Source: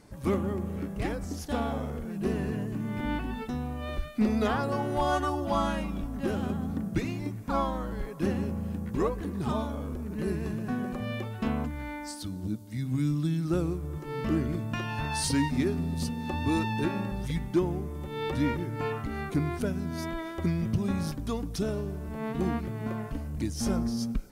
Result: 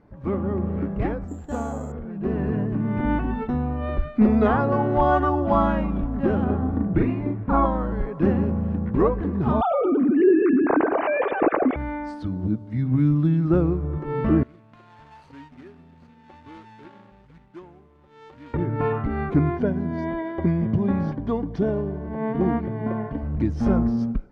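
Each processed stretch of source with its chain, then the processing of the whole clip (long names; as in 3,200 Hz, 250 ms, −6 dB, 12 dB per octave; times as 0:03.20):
0:01.28–0:01.92: notch filter 2,200 Hz, Q 15 + bad sample-rate conversion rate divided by 6×, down filtered, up zero stuff
0:06.44–0:07.66: high-frequency loss of the air 210 metres + double-tracking delay 39 ms −2.5 dB
0:09.61–0:11.76: three sine waves on the formant tracks + repeating echo 107 ms, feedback 58%, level −15.5 dB + envelope flattener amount 50%
0:14.43–0:18.54: running median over 25 samples + first-order pre-emphasis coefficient 0.97
0:19.50–0:23.23: parametric band 9,000 Hz −11.5 dB 0.42 octaves + notch comb filter 1,300 Hz
whole clip: automatic gain control gain up to 8.5 dB; low-pass filter 1,500 Hz 12 dB per octave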